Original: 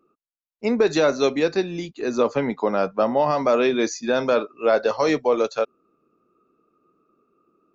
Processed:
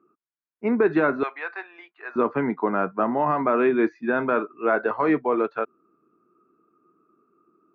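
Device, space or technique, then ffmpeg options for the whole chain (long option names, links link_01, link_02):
bass cabinet: -filter_complex "[0:a]highpass=85,equalizer=frequency=110:width_type=q:width=4:gain=-4,equalizer=frequency=340:width_type=q:width=4:gain=4,equalizer=frequency=540:width_type=q:width=4:gain=-10,equalizer=frequency=980:width_type=q:width=4:gain=3,equalizer=frequency=1500:width_type=q:width=4:gain=4,lowpass=frequency=2100:width=0.5412,lowpass=frequency=2100:width=1.3066,asettb=1/sr,asplit=3[link_01][link_02][link_03];[link_01]atrim=end=1.234[link_04];[link_02]atrim=start=1.23:end=2.16,asetpts=PTS-STARTPTS,afade=type=in:duration=0.004:curve=qsin,afade=type=out:start_time=0.926:duration=0.004:curve=qsin,highpass=frequency=730:width=0.5412,highpass=frequency=730:width=1.3066[link_05];[link_03]atrim=start=2.156[link_06];[link_04][link_05]acrossfade=duration=0.004:curve1=hsin:curve2=qsin[link_07];[link_07][link_06]acrossfade=duration=0.004:curve1=qsin:curve2=hsin,equalizer=frequency=840:width=5.8:gain=-3.5"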